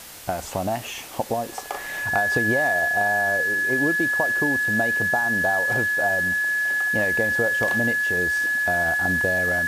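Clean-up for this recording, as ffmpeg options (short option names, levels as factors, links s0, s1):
-af "bandreject=f=1700:w=30,afwtdn=0.01"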